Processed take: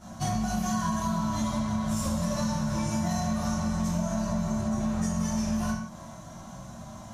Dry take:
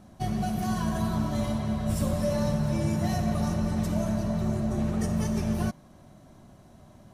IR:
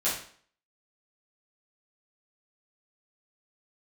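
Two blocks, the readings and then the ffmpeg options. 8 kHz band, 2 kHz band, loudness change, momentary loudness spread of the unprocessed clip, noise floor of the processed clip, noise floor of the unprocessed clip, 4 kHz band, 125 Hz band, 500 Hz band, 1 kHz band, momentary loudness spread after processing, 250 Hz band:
+6.0 dB, +1.5 dB, -1.0 dB, 2 LU, -44 dBFS, -54 dBFS, +2.0 dB, -3.0 dB, -4.0 dB, +2.5 dB, 15 LU, 0.0 dB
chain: -filter_complex "[0:a]equalizer=f=160:t=o:w=0.67:g=3,equalizer=f=400:t=o:w=0.67:g=-10,equalizer=f=1k:t=o:w=0.67:g=7,equalizer=f=6.3k:t=o:w=0.67:g=10[a];[1:a]atrim=start_sample=2205,afade=t=out:st=0.24:d=0.01,atrim=end_sample=11025[b];[a][b]afir=irnorm=-1:irlink=0,acompressor=threshold=-26dB:ratio=6"

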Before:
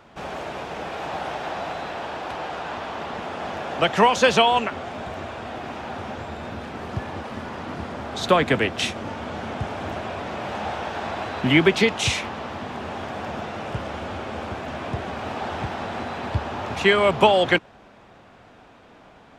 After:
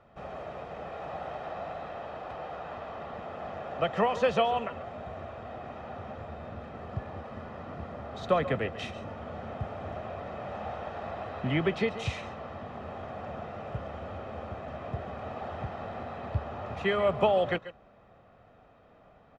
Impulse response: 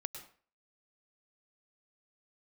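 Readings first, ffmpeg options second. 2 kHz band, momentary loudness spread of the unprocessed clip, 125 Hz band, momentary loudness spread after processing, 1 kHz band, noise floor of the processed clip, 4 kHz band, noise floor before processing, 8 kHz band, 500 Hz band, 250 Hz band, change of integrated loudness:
-13.5 dB, 15 LU, -6.5 dB, 14 LU, -9.5 dB, -58 dBFS, -15.5 dB, -50 dBFS, under -20 dB, -7.0 dB, -10.5 dB, -9.5 dB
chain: -filter_complex "[0:a]lowpass=f=1.2k:p=1,aecho=1:1:1.6:0.43[a];[1:a]atrim=start_sample=2205,atrim=end_sample=4410,asetrate=31311,aresample=44100[b];[a][b]afir=irnorm=-1:irlink=0,volume=-7dB"

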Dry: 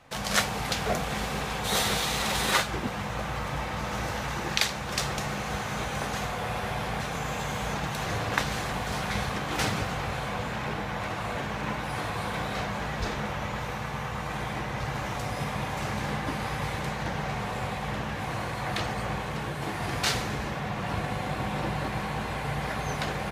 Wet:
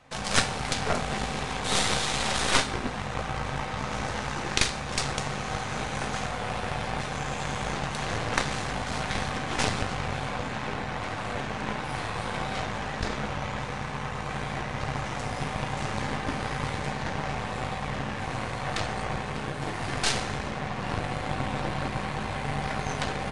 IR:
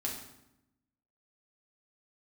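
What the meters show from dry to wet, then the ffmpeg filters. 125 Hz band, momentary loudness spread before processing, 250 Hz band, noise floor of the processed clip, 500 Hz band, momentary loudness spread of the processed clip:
0.0 dB, 6 LU, 0.0 dB, -34 dBFS, 0.0 dB, 6 LU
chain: -filter_complex "[0:a]aeval=exprs='0.75*(cos(1*acos(clip(val(0)/0.75,-1,1)))-cos(1*PI/2))+0.188*(cos(8*acos(clip(val(0)/0.75,-1,1)))-cos(8*PI/2))':c=same,asplit=2[a][b];[1:a]atrim=start_sample=2205[c];[b][c]afir=irnorm=-1:irlink=0,volume=-8.5dB[d];[a][d]amix=inputs=2:normalize=0,aresample=22050,aresample=44100,volume=-3.5dB"

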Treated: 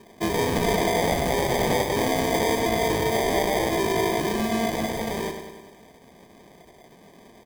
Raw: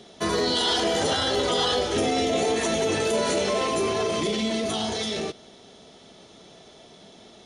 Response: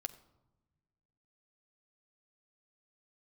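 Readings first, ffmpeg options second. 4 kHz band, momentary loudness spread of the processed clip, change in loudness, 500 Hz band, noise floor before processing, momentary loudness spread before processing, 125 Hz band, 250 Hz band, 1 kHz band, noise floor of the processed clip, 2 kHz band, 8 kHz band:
-6.0 dB, 6 LU, +0.5 dB, +0.5 dB, -50 dBFS, 5 LU, +5.5 dB, +2.0 dB, +2.5 dB, -52 dBFS, +2.5 dB, -1.0 dB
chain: -af "adynamicsmooth=sensitivity=6.5:basefreq=1.3k,acrusher=samples=32:mix=1:aa=0.000001,aecho=1:1:98|196|294|392|490|588|686:0.398|0.235|0.139|0.0818|0.0482|0.0285|0.0168"

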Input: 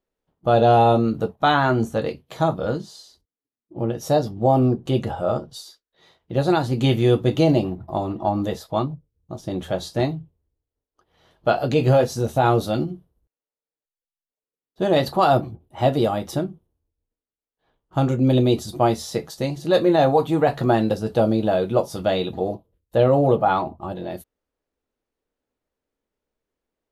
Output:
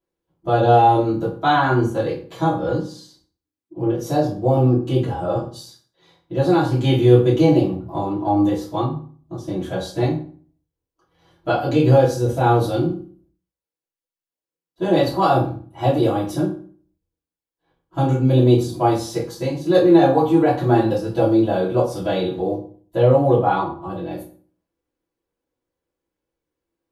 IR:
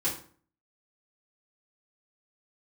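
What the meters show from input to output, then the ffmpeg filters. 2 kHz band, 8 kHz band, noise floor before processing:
+0.5 dB, -0.5 dB, under -85 dBFS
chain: -filter_complex "[1:a]atrim=start_sample=2205[a];[0:a][a]afir=irnorm=-1:irlink=0,volume=-6.5dB"

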